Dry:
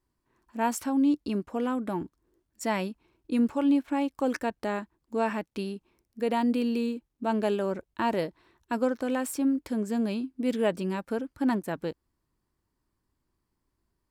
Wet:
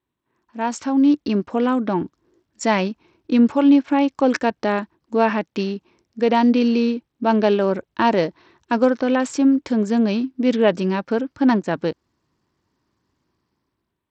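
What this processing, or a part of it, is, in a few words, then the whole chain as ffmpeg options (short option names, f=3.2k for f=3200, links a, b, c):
Bluetooth headset: -af "highpass=100,dynaudnorm=f=330:g=5:m=10.5dB,aresample=16000,aresample=44100" -ar 32000 -c:a sbc -b:a 64k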